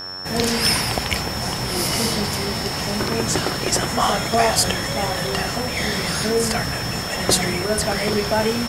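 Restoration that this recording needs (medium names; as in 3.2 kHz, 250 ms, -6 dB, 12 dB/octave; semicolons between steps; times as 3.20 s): de-hum 93.4 Hz, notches 19; band-stop 5.4 kHz, Q 30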